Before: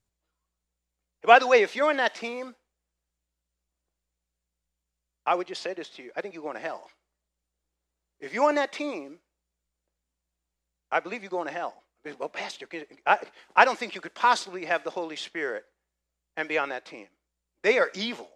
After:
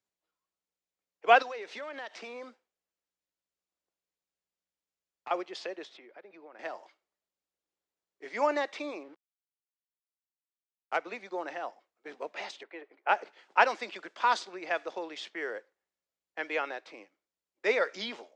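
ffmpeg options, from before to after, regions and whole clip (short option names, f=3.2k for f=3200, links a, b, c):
-filter_complex "[0:a]asettb=1/sr,asplit=3[a][b][c];[a]atrim=end=1.424[d];[b]atrim=start=1.42:end=5.31,asetpts=PTS-STARTPTS,afade=t=in:d=0.004:c=qsin,afade=t=out:st=3.886:d=0.004:c=qsin,acompressor=threshold=-32dB:ratio=5:attack=3.2:release=140:knee=1:detection=peak,aeval=exprs='clip(val(0),-1,0.0316)':c=same[e];[c]atrim=start=5.306[f];[d][e]acrossfade=d=0.004:c1=hsin:c2=qsin[g];[g][f]acrossfade=d=0.004:c1=qsin:c2=hsin,asettb=1/sr,asplit=3[h][i][j];[h]atrim=end=5.974[k];[i]atrim=start=5.97:end=6.59,asetpts=PTS-STARTPTS,afade=t=in:d=0.004:c=qsin,afade=t=out:st=0.616:d=0.004:c=qsin,lowpass=3.1k,acompressor=threshold=-45dB:ratio=3:attack=3.2:release=140:knee=1:detection=peak[l];[j]atrim=start=6.586[m];[k][l]acrossfade=d=0.004:c1=hsin:c2=qsin[n];[n][m]acrossfade=d=0.004:c1=qsin:c2=hsin,asettb=1/sr,asplit=3[o][p][q];[o]atrim=end=9.034[r];[p]atrim=start=9.03:end=10.97,asetpts=PTS-STARTPTS,afade=t=in:d=0.004:c=qsin,afade=t=out:st=1.936:d=0.004:c=qsin,aeval=exprs='val(0)*gte(abs(val(0)),0.00422)':c=same,adynamicsmooth=sensitivity=5.5:basefreq=2.2k[s];[q]atrim=start=10.966[t];[r][s]acrossfade=d=0.004:c1=hsin:c2=qsin[u];[u][t]acrossfade=d=0.004:c1=qsin:c2=hsin,asettb=1/sr,asplit=3[v][w][x];[v]atrim=end=12.634[y];[w]atrim=start=12.63:end=13.09,asetpts=PTS-STARTPTS,afade=t=in:d=0.004:c=qsin,afade=t=out:st=0.456:d=0.004:c=qsin,acompressor=mode=upward:threshold=-58dB:ratio=2.5:attack=3.2:release=140:knee=2.83:detection=peak,highpass=320,lowpass=2.2k[z];[x]atrim=start=13.086[aa];[y][z]acrossfade=d=0.004:c1=hsin:c2=qsin[ab];[ab][aa]acrossfade=d=0.004:c1=qsin:c2=hsin,highpass=78,acrossover=split=230 7800:gain=0.141 1 0.0794[ac][ad][ae];[ac][ad][ae]amix=inputs=3:normalize=0,volume=-5dB"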